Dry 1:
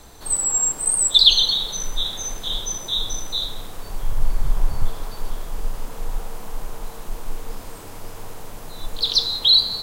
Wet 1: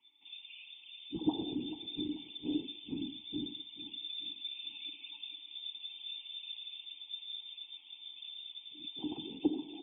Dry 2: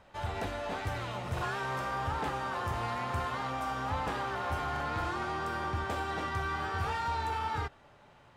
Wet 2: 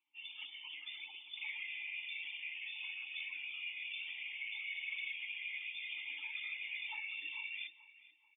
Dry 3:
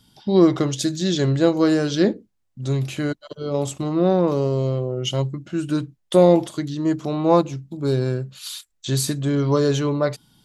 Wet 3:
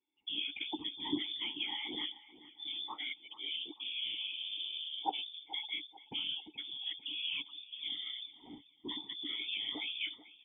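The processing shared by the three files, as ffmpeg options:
ffmpeg -i in.wav -filter_complex "[0:a]aemphasis=mode=production:type=cd,afftdn=noise_reduction=23:noise_floor=-32,acrossover=split=590|2200[link_01][link_02][link_03];[link_01]acompressor=threshold=-28dB:ratio=4[link_04];[link_02]acompressor=threshold=-38dB:ratio=4[link_05];[link_03]acompressor=threshold=-21dB:ratio=4[link_06];[link_04][link_05][link_06]amix=inputs=3:normalize=0,afreqshift=-30,afftfilt=real='hypot(re,im)*cos(2*PI*random(0))':imag='hypot(re,im)*sin(2*PI*random(1))':win_size=512:overlap=0.75,lowpass=frequency=3100:width_type=q:width=0.5098,lowpass=frequency=3100:width_type=q:width=0.6013,lowpass=frequency=3100:width_type=q:width=0.9,lowpass=frequency=3100:width_type=q:width=2.563,afreqshift=-3600,asplit=3[link_07][link_08][link_09];[link_07]bandpass=frequency=300:width_type=q:width=8,volume=0dB[link_10];[link_08]bandpass=frequency=870:width_type=q:width=8,volume=-6dB[link_11];[link_09]bandpass=frequency=2240:width_type=q:width=8,volume=-9dB[link_12];[link_10][link_11][link_12]amix=inputs=3:normalize=0,asplit=2[link_13][link_14];[link_14]adelay=437,lowpass=frequency=2600:poles=1,volume=-15.5dB,asplit=2[link_15][link_16];[link_16]adelay=437,lowpass=frequency=2600:poles=1,volume=0.44,asplit=2[link_17][link_18];[link_18]adelay=437,lowpass=frequency=2600:poles=1,volume=0.44,asplit=2[link_19][link_20];[link_20]adelay=437,lowpass=frequency=2600:poles=1,volume=0.44[link_21];[link_15][link_17][link_19][link_21]amix=inputs=4:normalize=0[link_22];[link_13][link_22]amix=inputs=2:normalize=0,volume=15dB" out.wav

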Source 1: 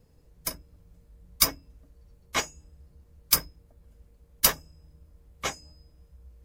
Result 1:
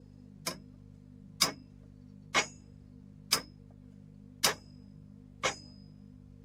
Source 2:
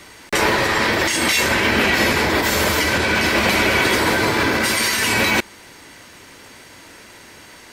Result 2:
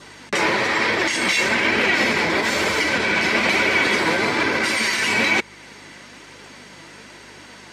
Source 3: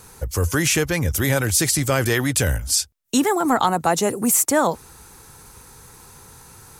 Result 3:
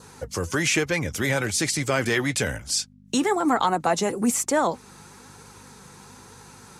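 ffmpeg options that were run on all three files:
ffmpeg -i in.wav -filter_complex "[0:a]asplit=2[link_01][link_02];[link_02]acompressor=threshold=-28dB:ratio=6,volume=-2.5dB[link_03];[link_01][link_03]amix=inputs=2:normalize=0,aeval=exprs='val(0)+0.0112*(sin(2*PI*50*n/s)+sin(2*PI*2*50*n/s)/2+sin(2*PI*3*50*n/s)/3+sin(2*PI*4*50*n/s)/4+sin(2*PI*5*50*n/s)/5)':channel_layout=same,adynamicequalizer=threshold=0.0224:dfrequency=2200:dqfactor=5.1:tfrequency=2200:tqfactor=5.1:attack=5:release=100:ratio=0.375:range=2.5:mode=boostabove:tftype=bell,flanger=delay=1.8:depth=4.4:regen=62:speed=1.1:shape=triangular,highpass=130,lowpass=7300" out.wav

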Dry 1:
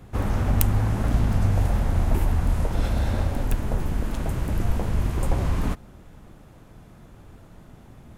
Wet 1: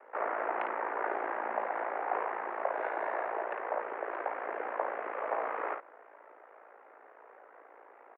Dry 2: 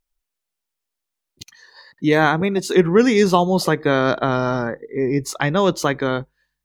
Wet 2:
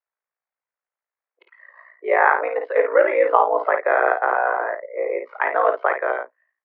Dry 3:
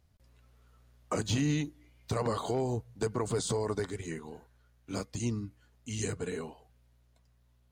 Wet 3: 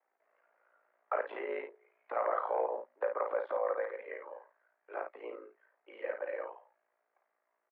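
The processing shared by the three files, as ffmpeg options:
ffmpeg -i in.wav -af "aeval=exprs='val(0)*sin(2*PI*28*n/s)':channel_layout=same,highpass=frequency=400:width_type=q:width=0.5412,highpass=frequency=400:width_type=q:width=1.307,lowpass=frequency=2000:width_type=q:width=0.5176,lowpass=frequency=2000:width_type=q:width=0.7071,lowpass=frequency=2000:width_type=q:width=1.932,afreqshift=98,aecho=1:1:26|54:0.168|0.501,volume=3.5dB" out.wav

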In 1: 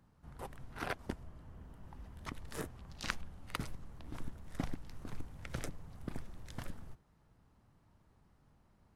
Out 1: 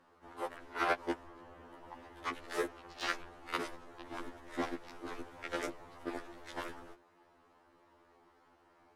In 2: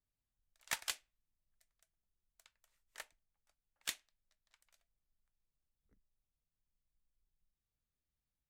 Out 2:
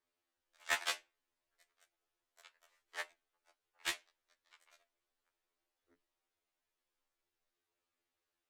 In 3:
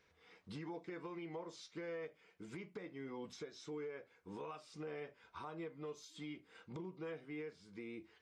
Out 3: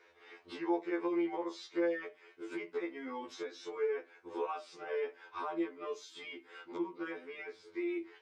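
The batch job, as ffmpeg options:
ffmpeg -i in.wav -filter_complex "[0:a]lowshelf=frequency=250:width_type=q:width=3:gain=-7.5,asplit=2[link_01][link_02];[link_02]highpass=frequency=720:poles=1,volume=17dB,asoftclip=type=tanh:threshold=-14dB[link_03];[link_01][link_03]amix=inputs=2:normalize=0,lowpass=frequency=2100:poles=1,volume=-6dB,afftfilt=real='re*2*eq(mod(b,4),0)':imag='im*2*eq(mod(b,4),0)':win_size=2048:overlap=0.75,volume=2.5dB" out.wav

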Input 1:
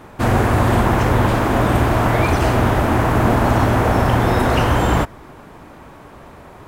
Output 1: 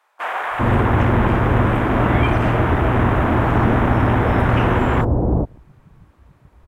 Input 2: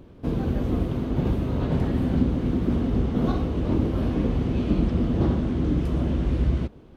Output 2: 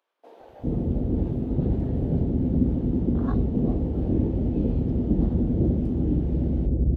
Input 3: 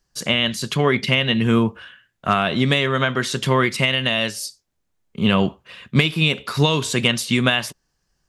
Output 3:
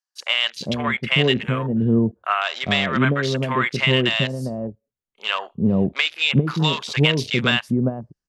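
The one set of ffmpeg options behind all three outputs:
ffmpeg -i in.wav -filter_complex "[0:a]afwtdn=0.0398,acrossover=split=680[link_01][link_02];[link_01]adelay=400[link_03];[link_03][link_02]amix=inputs=2:normalize=0" out.wav

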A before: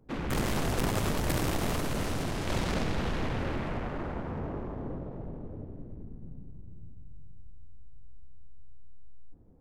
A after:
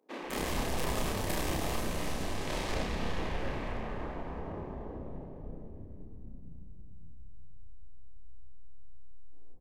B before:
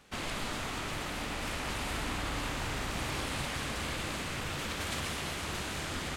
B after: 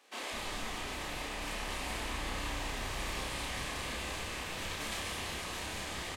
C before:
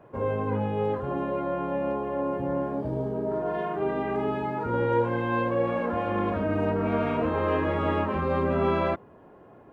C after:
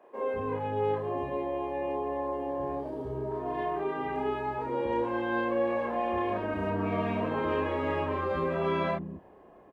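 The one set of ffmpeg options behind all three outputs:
ffmpeg -i in.wav -filter_complex "[0:a]equalizer=frequency=120:width=1.8:gain=-8.5,bandreject=frequency=1400:width=7.4,asplit=2[link_01][link_02];[link_02]adelay=31,volume=-2.5dB[link_03];[link_01][link_03]amix=inputs=2:normalize=0,acrossover=split=270[link_04][link_05];[link_04]adelay=200[link_06];[link_06][link_05]amix=inputs=2:normalize=0,volume=-3.5dB" out.wav

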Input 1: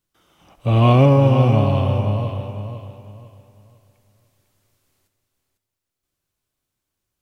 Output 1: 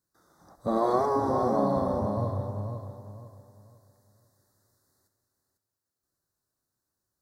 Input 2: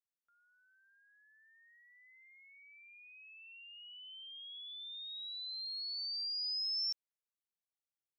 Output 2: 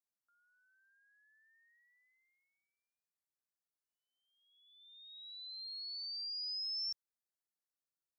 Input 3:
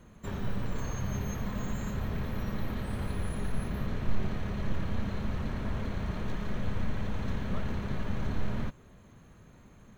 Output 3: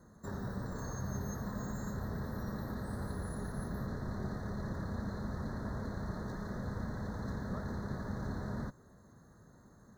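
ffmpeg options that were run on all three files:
ffmpeg -i in.wav -af "highpass=frequency=79:poles=1,afftfilt=real='re*lt(hypot(re,im),0.794)':imag='im*lt(hypot(re,im),0.794)':win_size=1024:overlap=0.75,asuperstop=centerf=2700:order=8:qfactor=1.3,volume=-3dB" out.wav

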